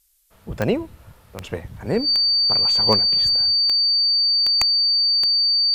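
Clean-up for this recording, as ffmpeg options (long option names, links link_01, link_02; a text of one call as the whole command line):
ffmpeg -i in.wav -af "adeclick=threshold=4,bandreject=frequency=4600:width=30,agate=range=-21dB:threshold=-42dB" out.wav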